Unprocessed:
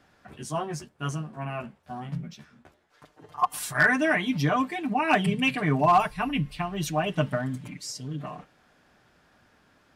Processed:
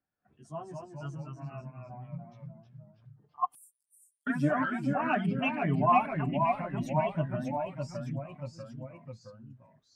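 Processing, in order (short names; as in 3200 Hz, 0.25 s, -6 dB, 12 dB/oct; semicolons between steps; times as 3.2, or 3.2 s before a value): echoes that change speed 0.179 s, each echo -1 st, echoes 3; 3.55–4.27 inverse Chebyshev high-pass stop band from 1600 Hz, stop band 80 dB; spectral expander 1.5:1; gain -5 dB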